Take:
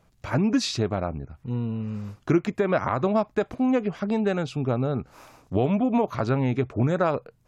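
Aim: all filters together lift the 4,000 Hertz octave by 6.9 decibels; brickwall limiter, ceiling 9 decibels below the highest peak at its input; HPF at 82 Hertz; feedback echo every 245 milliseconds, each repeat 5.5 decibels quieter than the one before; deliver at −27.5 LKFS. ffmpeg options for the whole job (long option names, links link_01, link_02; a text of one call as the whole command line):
ffmpeg -i in.wav -af "highpass=82,equalizer=frequency=4000:width_type=o:gain=8,alimiter=limit=-18dB:level=0:latency=1,aecho=1:1:245|490|735|980|1225|1470|1715:0.531|0.281|0.149|0.079|0.0419|0.0222|0.0118,volume=-0.5dB" out.wav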